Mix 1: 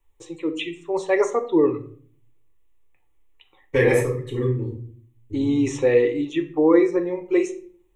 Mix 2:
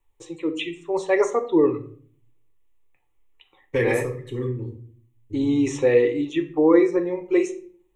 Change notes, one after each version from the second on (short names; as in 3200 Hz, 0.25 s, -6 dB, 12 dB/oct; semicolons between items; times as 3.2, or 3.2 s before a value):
second voice: send -6.5 dB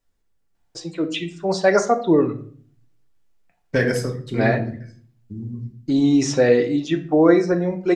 first voice: entry +0.55 s; master: remove fixed phaser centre 1000 Hz, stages 8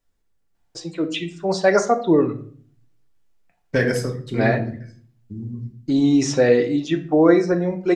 none